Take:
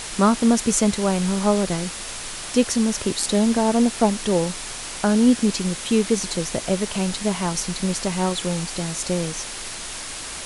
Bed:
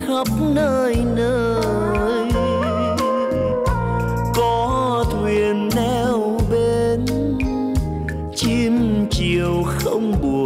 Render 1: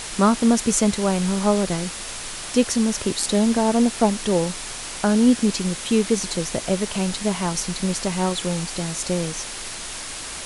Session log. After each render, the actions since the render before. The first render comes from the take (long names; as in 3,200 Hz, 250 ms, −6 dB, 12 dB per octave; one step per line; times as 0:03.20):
no processing that can be heard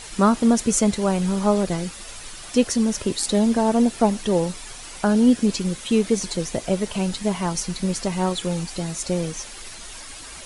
broadband denoise 9 dB, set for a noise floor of −33 dBFS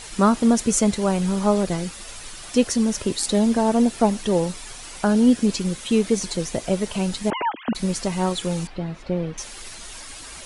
0:07.30–0:07.75: three sine waves on the formant tracks
0:08.67–0:09.38: high-frequency loss of the air 380 metres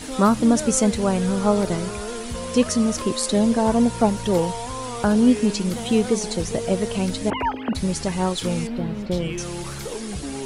mix in bed −12.5 dB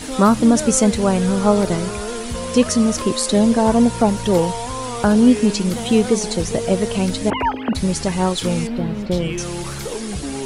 level +4 dB
brickwall limiter −3 dBFS, peak gain reduction 2 dB